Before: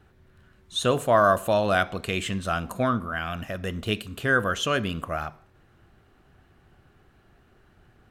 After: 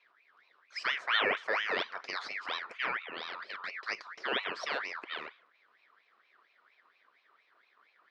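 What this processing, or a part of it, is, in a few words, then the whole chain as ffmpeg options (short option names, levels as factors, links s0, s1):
voice changer toy: -af "aeval=exprs='val(0)*sin(2*PI*1800*n/s+1800*0.4/4.3*sin(2*PI*4.3*n/s))':c=same,highpass=420,equalizer=f=420:t=q:w=4:g=3,equalizer=f=850:t=q:w=4:g=-5,equalizer=f=2700:t=q:w=4:g=-8,lowpass=f=4800:w=0.5412,lowpass=f=4800:w=1.3066,volume=0.562"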